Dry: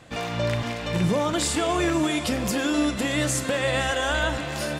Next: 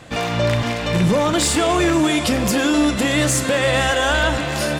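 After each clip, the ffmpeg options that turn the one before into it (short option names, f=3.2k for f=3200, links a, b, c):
-af "aeval=exprs='0.282*sin(PI/2*1.58*val(0)/0.282)':c=same"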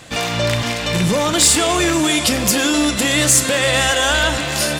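-af "highshelf=f=2.7k:g=10.5,volume=-1dB"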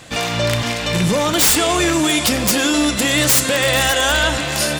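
-af "aeval=exprs='(mod(2.24*val(0)+1,2)-1)/2.24':c=same"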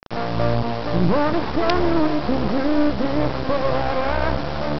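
-af "lowpass=f=1.1k:w=0.5412,lowpass=f=1.1k:w=1.3066,aresample=11025,acrusher=bits=3:dc=4:mix=0:aa=0.000001,aresample=44100,volume=3.5dB"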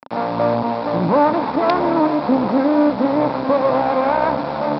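-af "highpass=190,equalizer=f=260:t=q:w=4:g=7,equalizer=f=370:t=q:w=4:g=-5,equalizer=f=560:t=q:w=4:g=4,equalizer=f=910:t=q:w=4:g=8,equalizer=f=1.8k:t=q:w=4:g=-4,equalizer=f=3k:t=q:w=4:g=-9,lowpass=f=4.2k:w=0.5412,lowpass=f=4.2k:w=1.3066,volume=2dB"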